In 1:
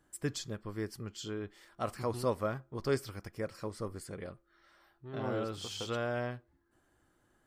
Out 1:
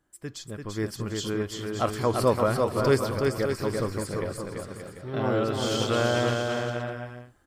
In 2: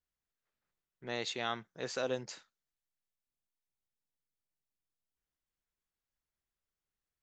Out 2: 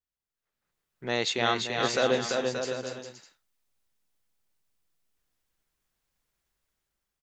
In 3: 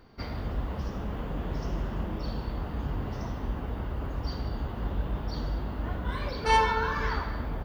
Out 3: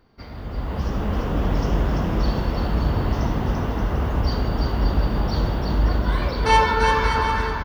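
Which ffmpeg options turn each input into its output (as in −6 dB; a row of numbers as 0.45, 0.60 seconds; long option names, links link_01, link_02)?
-af "dynaudnorm=framelen=260:gausssize=5:maxgain=13dB,aecho=1:1:340|578|744.6|861.2|942.9:0.631|0.398|0.251|0.158|0.1,volume=-3.5dB"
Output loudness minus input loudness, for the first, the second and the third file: +11.0, +10.0, +9.5 LU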